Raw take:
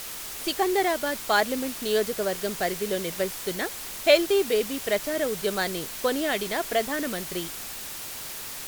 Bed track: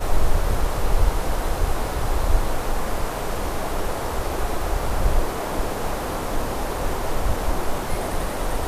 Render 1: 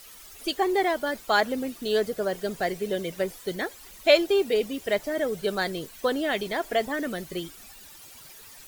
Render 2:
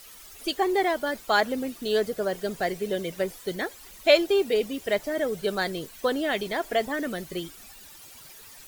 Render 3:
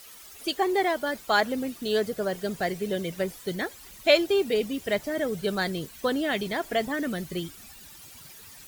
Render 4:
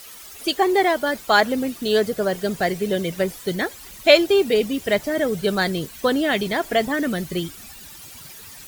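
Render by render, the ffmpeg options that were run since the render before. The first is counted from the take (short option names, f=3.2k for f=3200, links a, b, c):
-af "afftdn=nr=14:nf=-37"
-af anull
-af "highpass=f=100:p=1,asubboost=boost=2.5:cutoff=250"
-af "volume=6.5dB"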